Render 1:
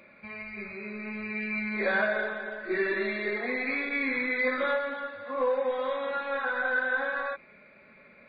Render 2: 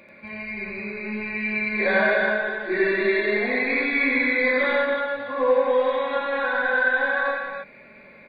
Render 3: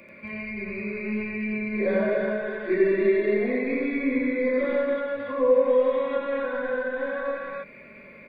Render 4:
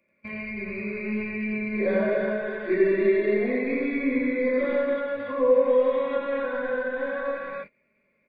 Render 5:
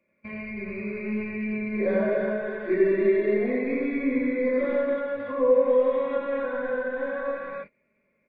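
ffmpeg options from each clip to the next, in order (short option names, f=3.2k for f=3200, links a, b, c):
-filter_complex "[0:a]bandreject=f=1.3k:w=6.4,asplit=2[a][b];[b]aecho=0:1:87.46|277:0.891|0.631[c];[a][c]amix=inputs=2:normalize=0,volume=4.5dB"
-filter_complex "[0:a]equalizer=f=800:t=o:w=0.33:g=-12,equalizer=f=1.6k:t=o:w=0.33:g=-6,equalizer=f=4k:t=o:w=0.33:g=-12,acrossover=split=400|650[a][b][c];[c]acompressor=threshold=-37dB:ratio=6[d];[a][b][d]amix=inputs=3:normalize=0,volume=2.5dB"
-af "agate=range=-23dB:threshold=-38dB:ratio=16:detection=peak"
-af "highshelf=f=3.1k:g=-10"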